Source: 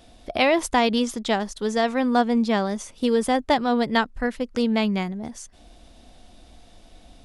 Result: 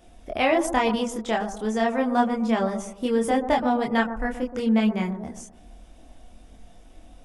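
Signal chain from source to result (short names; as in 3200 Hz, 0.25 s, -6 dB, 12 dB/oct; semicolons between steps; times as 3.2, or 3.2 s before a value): chorus voices 6, 0.28 Hz, delay 25 ms, depth 3.2 ms; bell 4200 Hz -11 dB 0.54 oct; analogue delay 0.124 s, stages 1024, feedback 38%, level -10 dB; gain +1.5 dB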